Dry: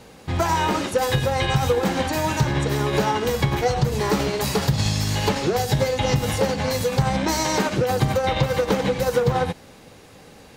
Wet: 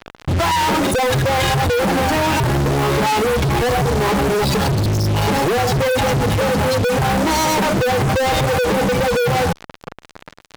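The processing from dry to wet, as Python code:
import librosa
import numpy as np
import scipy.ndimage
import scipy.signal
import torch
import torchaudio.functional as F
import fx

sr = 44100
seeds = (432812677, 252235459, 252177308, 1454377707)

y = fx.spec_gate(x, sr, threshold_db=-15, keep='strong')
y = fx.dynamic_eq(y, sr, hz=860.0, q=6.9, threshold_db=-38.0, ratio=4.0, max_db=4)
y = fx.fuzz(y, sr, gain_db=48.0, gate_db=-40.0)
y = F.gain(torch.from_numpy(y), -2.5).numpy()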